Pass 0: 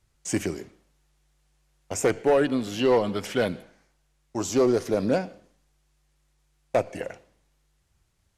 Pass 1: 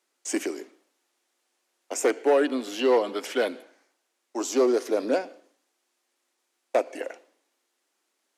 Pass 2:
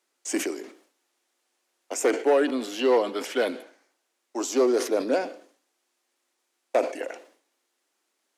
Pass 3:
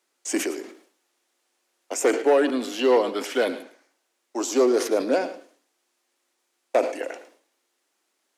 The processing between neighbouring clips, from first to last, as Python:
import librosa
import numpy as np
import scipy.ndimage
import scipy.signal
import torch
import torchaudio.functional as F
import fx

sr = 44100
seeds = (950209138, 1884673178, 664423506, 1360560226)

y1 = scipy.signal.sosfilt(scipy.signal.butter(8, 260.0, 'highpass', fs=sr, output='sos'), x)
y2 = fx.sustainer(y1, sr, db_per_s=120.0)
y3 = y2 + 10.0 ** (-15.0 / 20.0) * np.pad(y2, (int(109 * sr / 1000.0), 0))[:len(y2)]
y3 = y3 * librosa.db_to_amplitude(2.0)